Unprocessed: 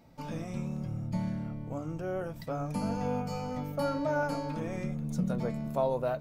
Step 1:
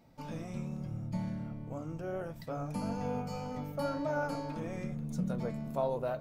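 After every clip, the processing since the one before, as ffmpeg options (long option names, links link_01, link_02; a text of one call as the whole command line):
ffmpeg -i in.wav -af "flanger=delay=4.8:depth=8.7:regen=-83:speed=1.7:shape=triangular,volume=1dB" out.wav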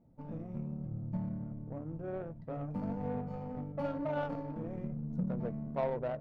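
ffmpeg -i in.wav -af "aemphasis=mode=production:type=50fm,adynamicsmooth=sensitivity=1.5:basefreq=540" out.wav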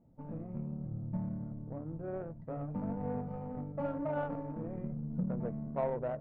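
ffmpeg -i in.wav -af "lowpass=1900" out.wav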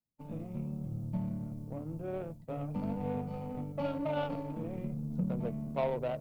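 ffmpeg -i in.wav -filter_complex "[0:a]agate=range=-33dB:threshold=-42dB:ratio=3:detection=peak,acrossover=split=180|680[link_01][link_02][link_03];[link_03]aexciter=amount=8.1:drive=4.8:freq=2500[link_04];[link_01][link_02][link_04]amix=inputs=3:normalize=0,volume=1.5dB" out.wav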